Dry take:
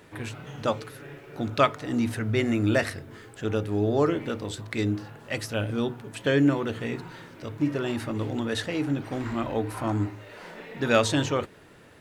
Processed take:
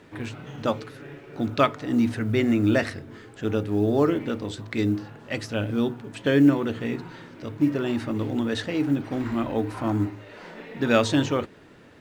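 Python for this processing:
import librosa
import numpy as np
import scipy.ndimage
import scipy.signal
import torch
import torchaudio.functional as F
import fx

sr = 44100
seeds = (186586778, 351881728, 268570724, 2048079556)

y = scipy.signal.sosfilt(scipy.signal.butter(2, 6800.0, 'lowpass', fs=sr, output='sos'), x)
y = fx.peak_eq(y, sr, hz=260.0, db=5.0, octaves=0.92)
y = fx.quant_companded(y, sr, bits=8)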